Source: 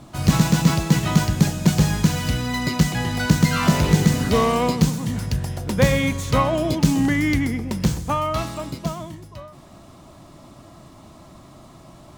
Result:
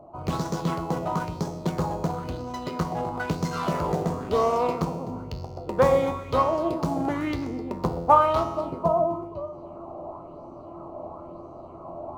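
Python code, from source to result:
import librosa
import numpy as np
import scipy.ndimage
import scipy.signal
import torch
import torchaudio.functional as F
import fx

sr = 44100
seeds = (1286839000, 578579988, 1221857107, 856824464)

p1 = fx.wiener(x, sr, points=25)
p2 = fx.rider(p1, sr, range_db=10, speed_s=2.0)
p3 = fx.band_shelf(p2, sr, hz=670.0, db=12.0, octaves=2.3)
p4 = fx.comb_fb(p3, sr, f0_hz=85.0, decay_s=1.0, harmonics='all', damping=0.0, mix_pct=80)
p5 = p4 + fx.echo_single(p4, sr, ms=256, db=-18.5, dry=0)
p6 = fx.bell_lfo(p5, sr, hz=1.0, low_hz=620.0, high_hz=6000.0, db=9)
y = p6 * librosa.db_to_amplitude(-1.5)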